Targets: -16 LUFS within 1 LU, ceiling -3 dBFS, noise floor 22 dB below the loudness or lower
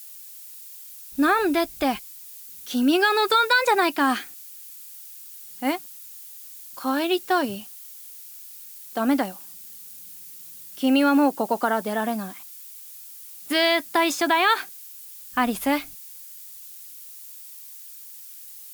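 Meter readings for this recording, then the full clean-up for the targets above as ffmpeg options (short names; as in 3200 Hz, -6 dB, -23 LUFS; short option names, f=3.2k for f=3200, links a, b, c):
noise floor -43 dBFS; noise floor target -45 dBFS; loudness -22.5 LUFS; peak -8.0 dBFS; loudness target -16.0 LUFS
-> -af "afftdn=nr=6:nf=-43"
-af "volume=6.5dB,alimiter=limit=-3dB:level=0:latency=1"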